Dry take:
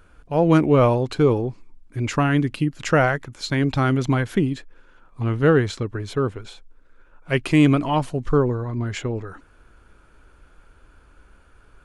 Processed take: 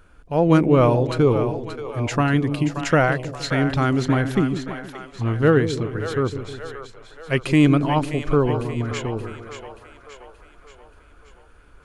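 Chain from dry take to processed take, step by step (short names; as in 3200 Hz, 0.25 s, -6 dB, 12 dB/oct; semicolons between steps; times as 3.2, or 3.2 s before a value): split-band echo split 490 Hz, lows 0.156 s, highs 0.578 s, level -9 dB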